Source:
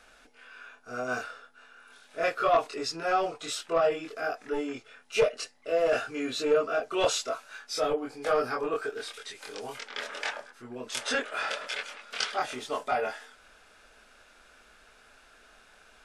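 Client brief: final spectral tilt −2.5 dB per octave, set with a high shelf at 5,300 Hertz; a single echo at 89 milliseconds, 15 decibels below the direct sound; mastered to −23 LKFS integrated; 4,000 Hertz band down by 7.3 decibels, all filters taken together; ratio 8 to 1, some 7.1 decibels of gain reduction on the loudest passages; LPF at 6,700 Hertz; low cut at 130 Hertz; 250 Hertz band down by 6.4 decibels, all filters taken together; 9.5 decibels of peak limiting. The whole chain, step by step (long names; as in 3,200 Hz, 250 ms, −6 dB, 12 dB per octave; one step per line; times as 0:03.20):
high-pass filter 130 Hz
low-pass filter 6,700 Hz
parametric band 250 Hz −8.5 dB
parametric band 4,000 Hz −5.5 dB
high-shelf EQ 5,300 Hz −8 dB
downward compressor 8 to 1, threshold −28 dBFS
brickwall limiter −30 dBFS
single-tap delay 89 ms −15 dB
level +17 dB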